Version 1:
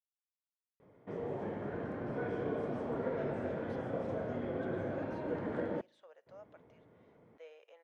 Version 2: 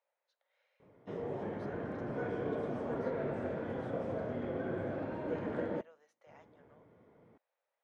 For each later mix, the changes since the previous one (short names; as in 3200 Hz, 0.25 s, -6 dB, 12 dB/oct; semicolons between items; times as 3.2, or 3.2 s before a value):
speech: entry -2.10 s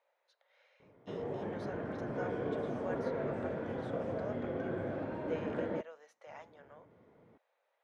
speech +9.0 dB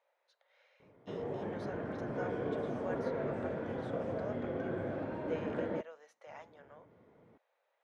none